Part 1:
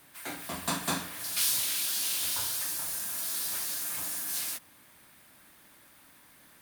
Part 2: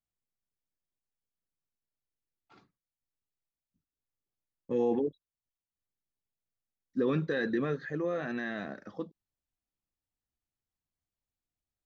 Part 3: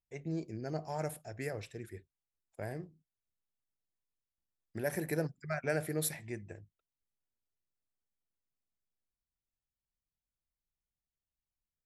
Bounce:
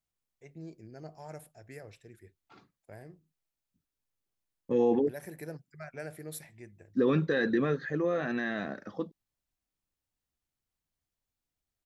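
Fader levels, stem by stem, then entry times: off, +3.0 dB, -8.0 dB; off, 0.00 s, 0.30 s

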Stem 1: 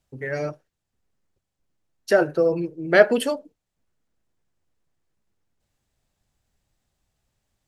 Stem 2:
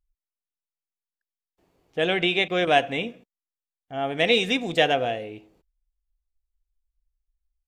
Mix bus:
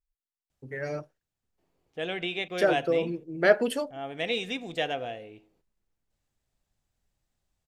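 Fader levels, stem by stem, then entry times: -6.0, -9.5 dB; 0.50, 0.00 s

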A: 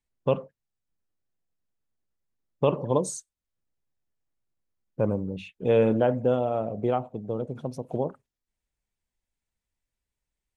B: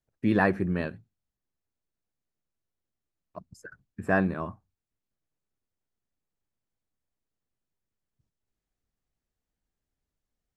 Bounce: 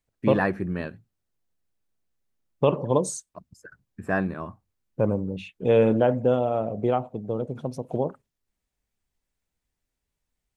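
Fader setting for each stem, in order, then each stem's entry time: +2.0, -1.0 dB; 0.00, 0.00 s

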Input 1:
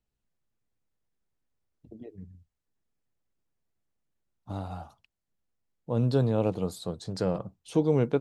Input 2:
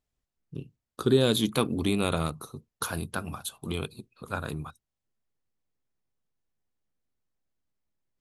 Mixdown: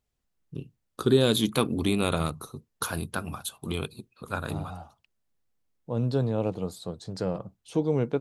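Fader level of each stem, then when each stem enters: -1.5, +1.0 dB; 0.00, 0.00 s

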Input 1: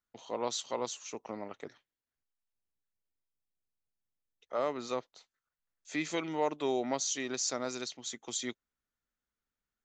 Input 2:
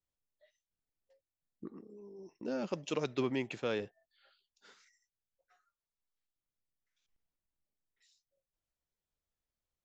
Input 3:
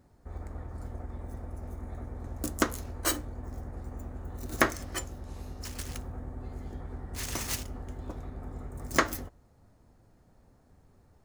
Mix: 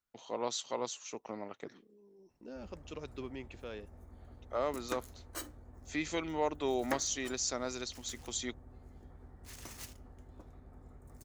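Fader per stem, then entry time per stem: -1.5, -10.0, -14.0 dB; 0.00, 0.00, 2.30 s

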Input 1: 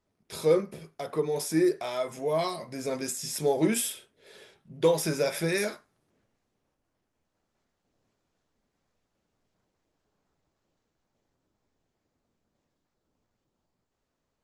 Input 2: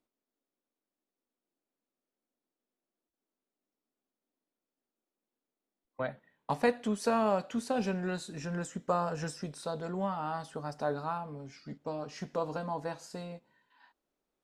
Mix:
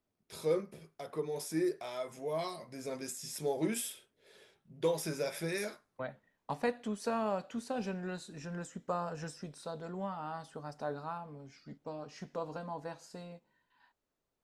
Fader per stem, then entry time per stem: -8.5, -5.5 dB; 0.00, 0.00 s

